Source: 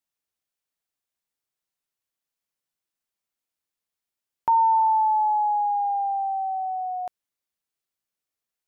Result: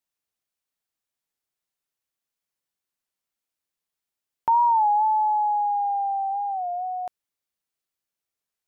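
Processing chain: warped record 33 1/3 rpm, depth 100 cents

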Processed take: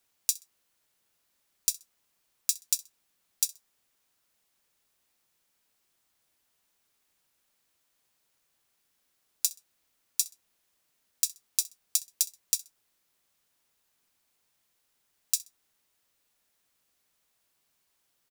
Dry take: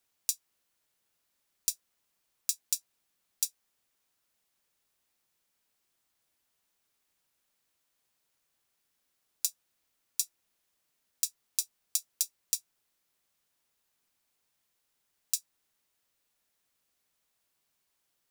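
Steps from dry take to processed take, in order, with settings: 11.98–12.39 s: band-stop 1.4 kHz, Q 8.3; feedback delay 64 ms, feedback 26%, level -21 dB; trim +3.5 dB

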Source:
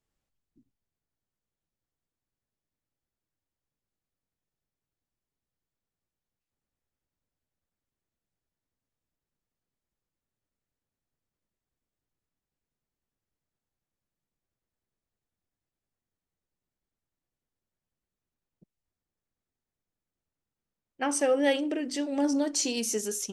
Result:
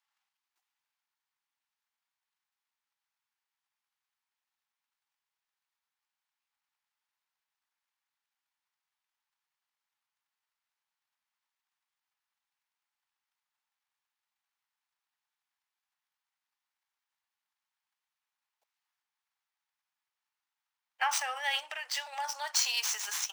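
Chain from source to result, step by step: median filter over 5 samples; transient shaper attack +8 dB, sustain +4 dB; peak limiter -20 dBFS, peak gain reduction 12 dB; elliptic high-pass 850 Hz, stop band 70 dB; trim +5 dB

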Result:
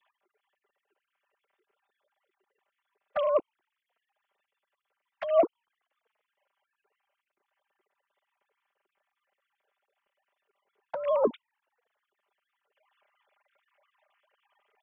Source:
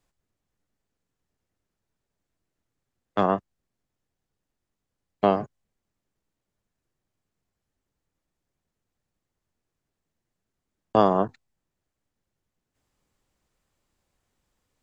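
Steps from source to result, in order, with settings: formants replaced by sine waves; compressor with a negative ratio -31 dBFS, ratio -1; touch-sensitive flanger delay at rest 5.1 ms, full sweep at -32 dBFS; trim +7.5 dB

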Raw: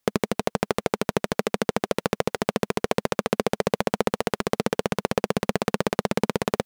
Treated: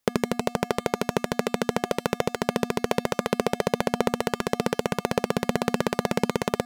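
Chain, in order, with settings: feedback comb 240 Hz, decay 0.48 s, harmonics odd, mix 60%; trim +7 dB

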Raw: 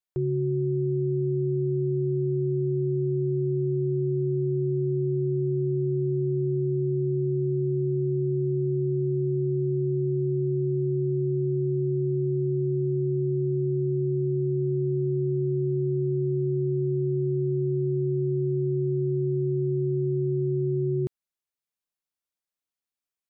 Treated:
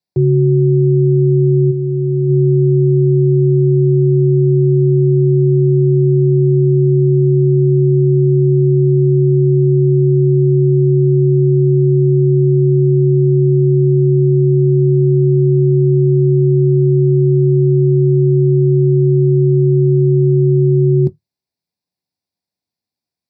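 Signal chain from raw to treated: 1.70–2.28 s: peaking EQ 220 Hz -12.5 dB -> -4.5 dB 1.7 oct; reverberation, pre-delay 3 ms, DRR 11.5 dB

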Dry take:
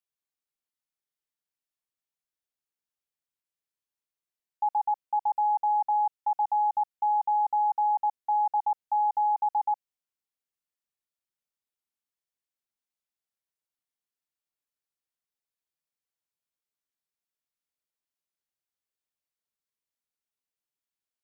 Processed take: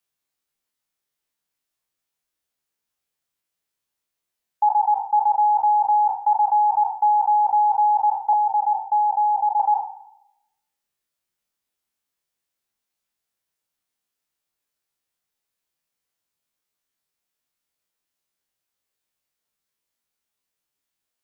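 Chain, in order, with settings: spectral sustain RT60 0.91 s; reverb removal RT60 0.52 s; 8.33–9.60 s: steep low-pass 890 Hz 36 dB/octave; trim +8.5 dB

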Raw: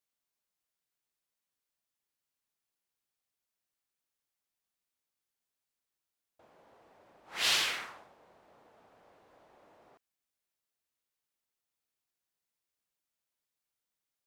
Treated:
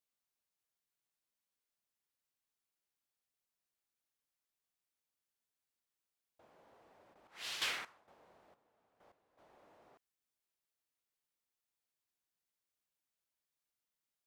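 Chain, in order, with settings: 7.13–9.37 s: trance gate "..xx..xxxx....x." 130 bpm -12 dB; trim -3.5 dB

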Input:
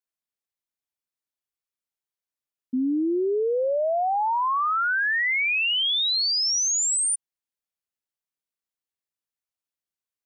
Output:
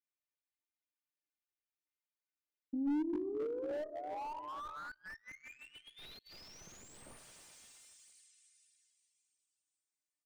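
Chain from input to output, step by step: peaking EQ 2.2 kHz +9.5 dB 1.2 oct; band-stop 660 Hz, Q 13; feedback comb 300 Hz, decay 0.2 s, harmonics all, mix 90%; on a send: delay 134 ms -16 dB; on the sum: plate-style reverb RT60 3.7 s, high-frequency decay 0.95×, DRR 12 dB; Chebyshev shaper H 3 -10 dB, 4 -40 dB, 5 -40 dB, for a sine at -14 dBFS; phaser 1.6 Hz, delay 2.2 ms, feedback 35%; inverted gate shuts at -29 dBFS, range -37 dB; compression 2.5:1, threshold -57 dBFS, peak gain reduction 14 dB; peaking EQ 320 Hz +7.5 dB 1.1 oct; slew-rate limiter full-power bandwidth 1 Hz; trim +18 dB

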